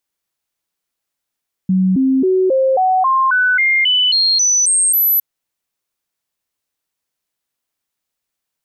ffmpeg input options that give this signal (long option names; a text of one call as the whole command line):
ffmpeg -f lavfi -i "aevalsrc='0.299*clip(min(mod(t,0.27),0.27-mod(t,0.27))/0.005,0,1)*sin(2*PI*187*pow(2,floor(t/0.27)/2)*mod(t,0.27))':duration=3.51:sample_rate=44100" out.wav